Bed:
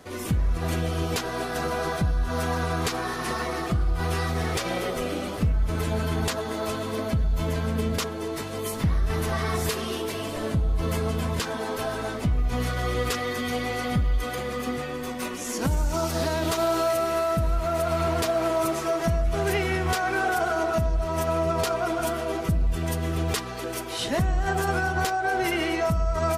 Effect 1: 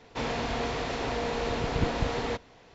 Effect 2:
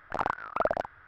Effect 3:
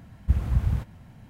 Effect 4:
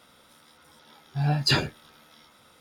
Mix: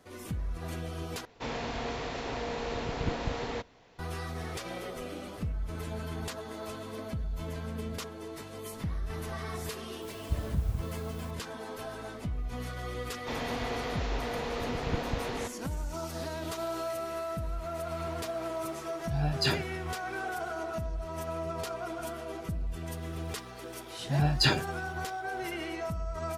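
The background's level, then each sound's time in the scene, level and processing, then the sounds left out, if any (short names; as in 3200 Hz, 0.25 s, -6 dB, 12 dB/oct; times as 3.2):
bed -11 dB
1.25 replace with 1 -4.5 dB
10.02 add 3 -9.5 dB + requantised 8-bit, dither triangular
13.11 add 1 -4.5 dB + downsampling 16000 Hz
17.95 add 4 -6.5 dB
22.94 add 4 -2.5 dB
not used: 2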